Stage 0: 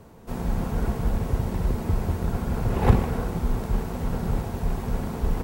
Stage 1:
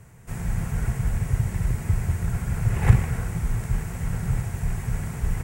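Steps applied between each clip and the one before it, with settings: graphic EQ 125/250/500/1000/2000/4000/8000 Hz +10/-10/-6/-5/+9/-8/+11 dB; trim -1.5 dB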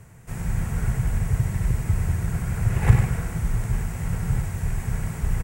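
reverse; upward compressor, threshold -40 dBFS; reverse; delay 97 ms -6.5 dB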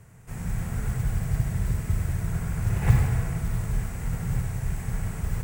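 modulation noise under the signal 29 dB; reverberation RT60 1.9 s, pre-delay 29 ms, DRR 4 dB; trim -4.5 dB

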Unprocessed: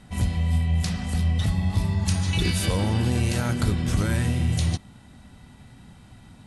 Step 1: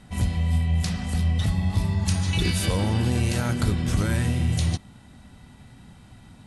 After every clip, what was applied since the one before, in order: no audible change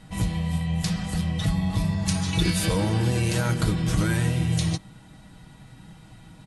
comb 6.3 ms, depth 62%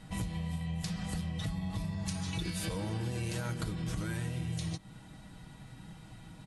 compression 6:1, threshold -30 dBFS, peak gain reduction 12.5 dB; trim -3 dB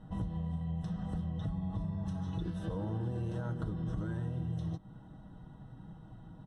boxcar filter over 19 samples

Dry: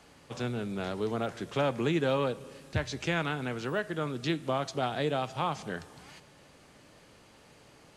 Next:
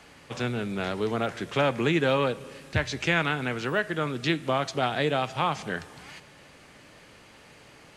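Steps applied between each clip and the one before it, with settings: peaking EQ 2.1 kHz +5.5 dB 1.3 oct; trim +3.5 dB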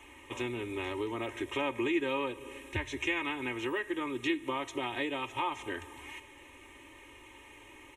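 static phaser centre 960 Hz, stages 8; compression 2:1, threshold -35 dBFS, peak gain reduction 7.5 dB; comb 3.2 ms, depth 72%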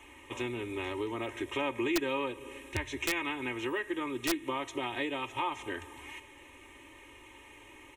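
integer overflow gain 20.5 dB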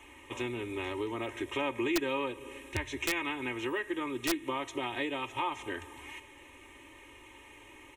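no audible change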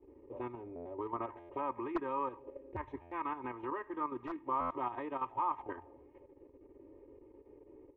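level held to a coarse grid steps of 9 dB; buffer glitch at 0.75/1.39/3.01/4.60 s, samples 512; touch-sensitive low-pass 380–1100 Hz up, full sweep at -35 dBFS; trim -4 dB

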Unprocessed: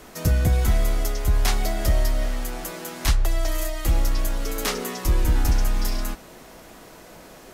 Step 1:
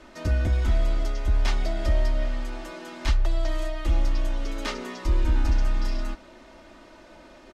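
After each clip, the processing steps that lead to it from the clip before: low-pass 4.5 kHz 12 dB/octave; comb 3.3 ms, depth 61%; trim -5 dB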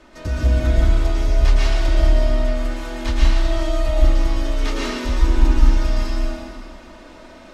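reverberation RT60 1.8 s, pre-delay 109 ms, DRR -6 dB

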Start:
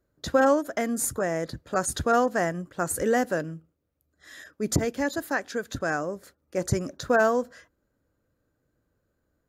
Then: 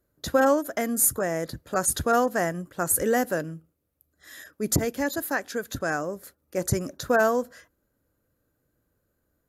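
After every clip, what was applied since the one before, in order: peaking EQ 12 kHz +13 dB 0.65 oct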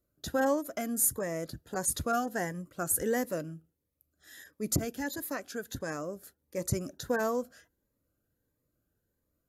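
Shepard-style phaser rising 1.5 Hz; trim -5.5 dB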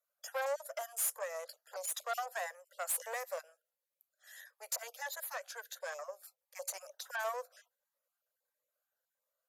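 random holes in the spectrogram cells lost 20%; valve stage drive 29 dB, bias 0.5; steep high-pass 520 Hz 72 dB/octave

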